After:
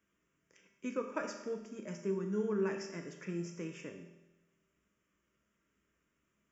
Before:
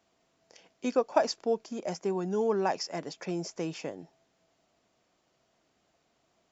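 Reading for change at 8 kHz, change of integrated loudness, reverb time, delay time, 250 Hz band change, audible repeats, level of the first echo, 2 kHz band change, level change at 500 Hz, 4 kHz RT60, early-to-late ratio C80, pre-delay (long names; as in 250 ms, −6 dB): can't be measured, −7.5 dB, 1.0 s, no echo audible, −4.0 dB, no echo audible, no echo audible, −4.5 dB, −8.0 dB, 0.95 s, 8.5 dB, 5 ms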